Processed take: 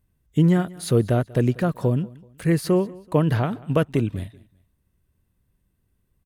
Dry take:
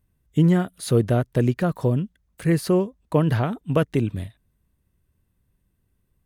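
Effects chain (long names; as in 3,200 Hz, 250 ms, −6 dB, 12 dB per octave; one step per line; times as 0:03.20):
repeating echo 190 ms, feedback 34%, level −22 dB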